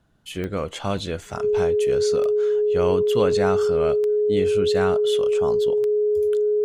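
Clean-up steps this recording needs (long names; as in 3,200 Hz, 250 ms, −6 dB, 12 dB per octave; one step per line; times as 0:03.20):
click removal
notch filter 420 Hz, Q 30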